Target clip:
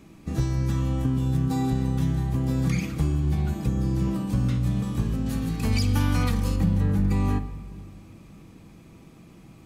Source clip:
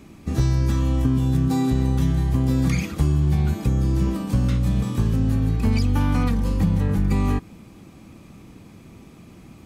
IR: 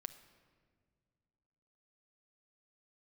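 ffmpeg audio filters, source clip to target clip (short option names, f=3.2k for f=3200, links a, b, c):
-filter_complex "[0:a]asettb=1/sr,asplit=3[a][b][c];[a]atrim=end=5.264[d];[b]atrim=start=5.26:end=6.56,asetpts=PTS-STARTPTS,afade=t=in:d=0.004:c=qsin,afade=t=out:st=1.296:d=0.004:c=qsin,highshelf=f=2k:g=9.5[e];[c]atrim=start=6.556[f];[d][e]acrossfade=d=0.004:c1=hsin:c2=qsin[g];[g][f]acrossfade=d=0.004:c1=qsin:c2=hsin[h];[1:a]atrim=start_sample=2205[i];[h][i]afir=irnorm=-1:irlink=0"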